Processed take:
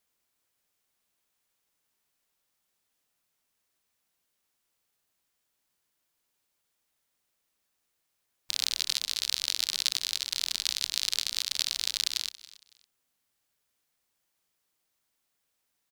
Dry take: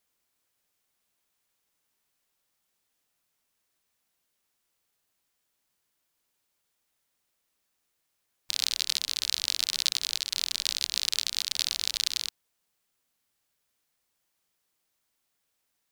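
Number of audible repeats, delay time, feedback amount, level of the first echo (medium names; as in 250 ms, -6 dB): 2, 278 ms, 26%, -19.0 dB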